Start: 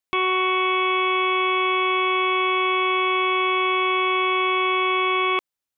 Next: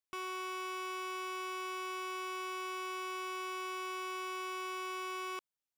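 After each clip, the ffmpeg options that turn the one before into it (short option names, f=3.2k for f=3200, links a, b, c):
-af "asoftclip=type=tanh:threshold=-31dB,volume=-8.5dB"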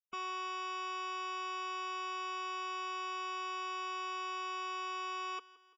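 -af "afftfilt=real='re*gte(hypot(re,im),0.00631)':imag='im*gte(hypot(re,im),0.00631)':win_size=1024:overlap=0.75,aecho=1:1:4.3:0.69,aecho=1:1:170|340|510|680:0.112|0.0572|0.0292|0.0149"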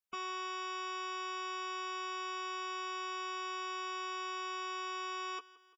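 -filter_complex "[0:a]asplit=2[a][b];[b]adelay=14,volume=-10dB[c];[a][c]amix=inputs=2:normalize=0,volume=1dB"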